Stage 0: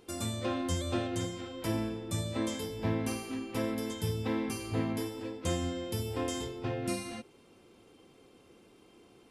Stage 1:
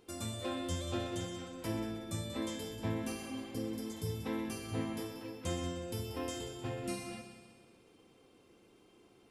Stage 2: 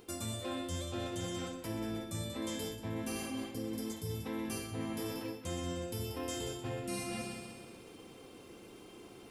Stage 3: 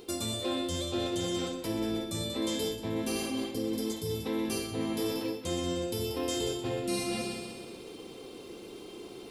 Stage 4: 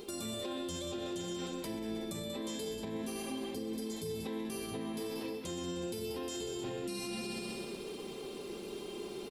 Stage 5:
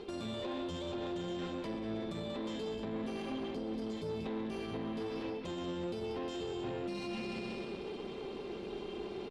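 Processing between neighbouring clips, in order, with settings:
spectral replace 3.22–4.07 s, 530–4000 Hz both; on a send: multi-head delay 62 ms, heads second and third, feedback 54%, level -11.5 dB; on the sum: trim -5 dB
treble shelf 11 kHz +7 dB; reverse; compression 6:1, threshold -47 dBFS, peak gain reduction 15.5 dB; reverse; trim +10.5 dB
fifteen-band graphic EQ 100 Hz -4 dB, 400 Hz +6 dB, 1.6 kHz -3 dB, 4 kHz +7 dB; trim +4.5 dB
compression, threshold -35 dBFS, peak gain reduction 7.5 dB; comb 5 ms, depth 49%; peak limiter -31.5 dBFS, peak gain reduction 6.5 dB; trim +1 dB
low-pass 3.1 kHz 12 dB/octave; valve stage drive 36 dB, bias 0.55; trim +4 dB

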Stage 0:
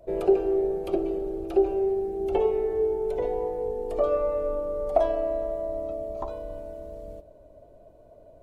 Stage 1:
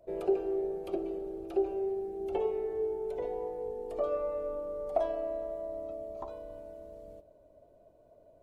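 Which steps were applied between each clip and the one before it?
bass shelf 82 Hz -8 dB; trim -7.5 dB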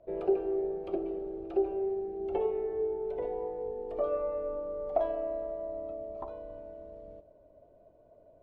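Bessel low-pass 2.4 kHz, order 2; trim +1 dB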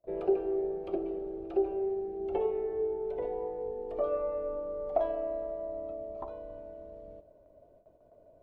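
gate with hold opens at -51 dBFS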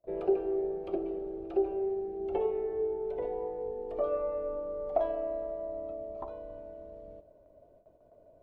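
no audible change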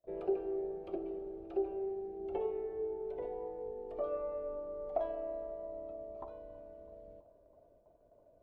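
feedback echo behind a low-pass 327 ms, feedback 82%, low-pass 960 Hz, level -23 dB; trim -6 dB

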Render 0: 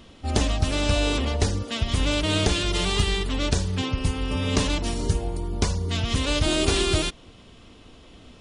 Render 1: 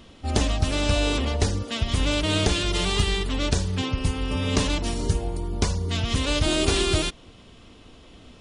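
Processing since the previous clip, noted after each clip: no audible change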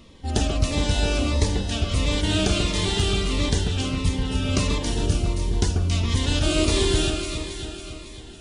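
on a send: echo whose repeats swap between lows and highs 138 ms, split 1.8 kHz, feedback 79%, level -4 dB; on the sum: Shepard-style phaser falling 1.5 Hz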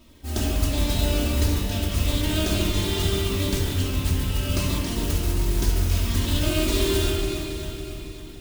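modulation noise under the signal 10 dB; simulated room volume 3700 m³, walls mixed, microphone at 2.8 m; trim -7 dB

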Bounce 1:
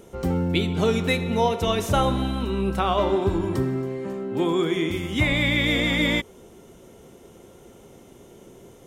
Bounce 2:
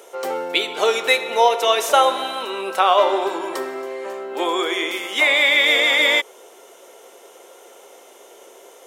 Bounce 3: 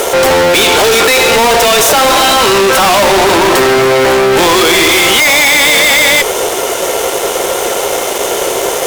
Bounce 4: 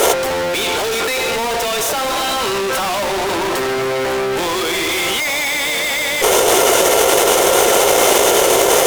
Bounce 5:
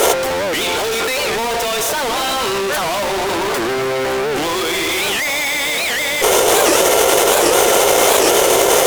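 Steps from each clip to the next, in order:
high-pass 490 Hz 24 dB/octave; trim +8.5 dB
fuzz box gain 43 dB, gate -51 dBFS; trim +6 dB
compressor with a negative ratio -15 dBFS, ratio -1; trim -1.5 dB
warped record 78 rpm, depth 250 cents

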